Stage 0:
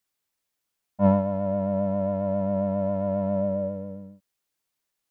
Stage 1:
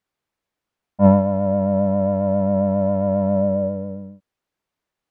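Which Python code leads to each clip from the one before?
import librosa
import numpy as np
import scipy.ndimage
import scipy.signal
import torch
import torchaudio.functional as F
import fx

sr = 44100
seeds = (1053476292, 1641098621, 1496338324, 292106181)

y = fx.lowpass(x, sr, hz=1400.0, slope=6)
y = F.gain(torch.from_numpy(y), 7.0).numpy()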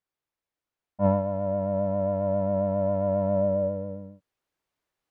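y = fx.peak_eq(x, sr, hz=200.0, db=-5.5, octaves=0.39)
y = fx.rider(y, sr, range_db=10, speed_s=2.0)
y = F.gain(torch.from_numpy(y), -5.0).numpy()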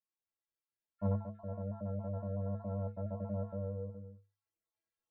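y = fx.spec_dropout(x, sr, seeds[0], share_pct=34)
y = fx.stiff_resonator(y, sr, f0_hz=99.0, decay_s=0.32, stiffness=0.03)
y = F.gain(torch.from_numpy(y), -1.5).numpy()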